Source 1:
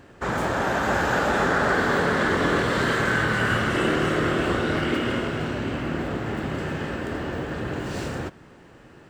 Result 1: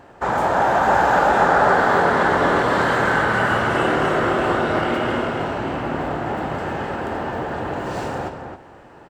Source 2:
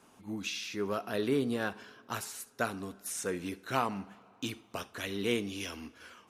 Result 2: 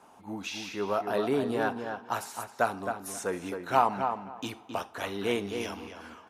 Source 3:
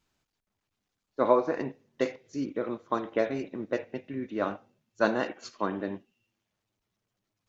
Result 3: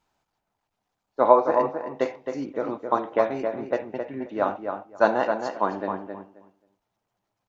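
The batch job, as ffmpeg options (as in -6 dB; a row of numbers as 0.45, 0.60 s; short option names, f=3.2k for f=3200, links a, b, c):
-filter_complex "[0:a]equalizer=f=830:w=1.1:g=12.5,bandreject=f=1.1k:w=26,asplit=2[a][b];[b]adelay=266,lowpass=f=2.3k:p=1,volume=-6dB,asplit=2[c][d];[d]adelay=266,lowpass=f=2.3k:p=1,volume=0.18,asplit=2[e][f];[f]adelay=266,lowpass=f=2.3k:p=1,volume=0.18[g];[c][e][g]amix=inputs=3:normalize=0[h];[a][h]amix=inputs=2:normalize=0,volume=-1.5dB"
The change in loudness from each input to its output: +4.5, +4.0, +5.5 LU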